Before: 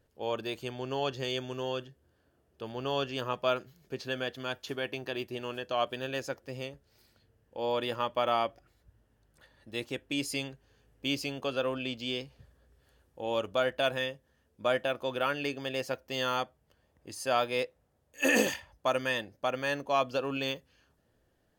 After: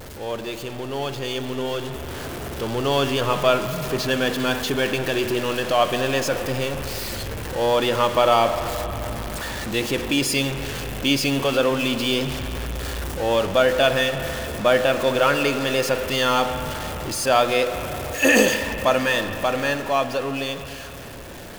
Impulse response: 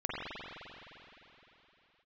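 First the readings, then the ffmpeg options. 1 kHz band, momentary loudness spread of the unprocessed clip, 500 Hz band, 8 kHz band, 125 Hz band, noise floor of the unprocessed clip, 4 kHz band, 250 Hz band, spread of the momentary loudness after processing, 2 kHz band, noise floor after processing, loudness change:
+11.0 dB, 11 LU, +11.5 dB, +14.0 dB, +14.5 dB, -72 dBFS, +11.5 dB, +12.5 dB, 11 LU, +11.5 dB, -35 dBFS, +10.5 dB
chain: -filter_complex "[0:a]aeval=exprs='val(0)+0.5*0.02*sgn(val(0))':c=same,asplit=2[a][b];[1:a]atrim=start_sample=2205[c];[b][c]afir=irnorm=-1:irlink=0,volume=-12.5dB[d];[a][d]amix=inputs=2:normalize=0,dynaudnorm=f=130:g=31:m=8dB"

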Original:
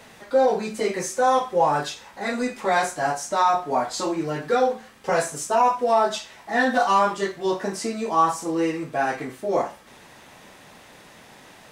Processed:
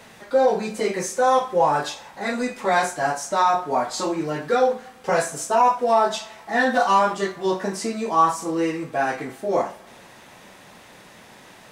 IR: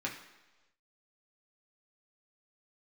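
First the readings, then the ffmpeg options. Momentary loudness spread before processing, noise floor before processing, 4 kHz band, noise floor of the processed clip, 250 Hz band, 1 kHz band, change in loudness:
7 LU, -49 dBFS, +1.0 dB, -47 dBFS, +0.5 dB, +1.0 dB, +1.0 dB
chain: -filter_complex "[0:a]asplit=2[a][b];[1:a]atrim=start_sample=2205,asetrate=29106,aresample=44100[c];[b][c]afir=irnorm=-1:irlink=0,volume=-19dB[d];[a][d]amix=inputs=2:normalize=0"

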